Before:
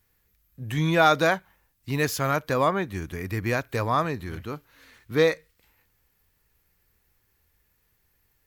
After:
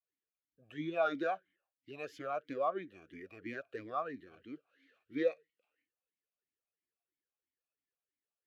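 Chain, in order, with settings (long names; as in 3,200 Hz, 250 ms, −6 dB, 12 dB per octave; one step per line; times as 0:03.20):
noise reduction from a noise print of the clip's start 10 dB
formant filter swept between two vowels a-i 3 Hz
level −4 dB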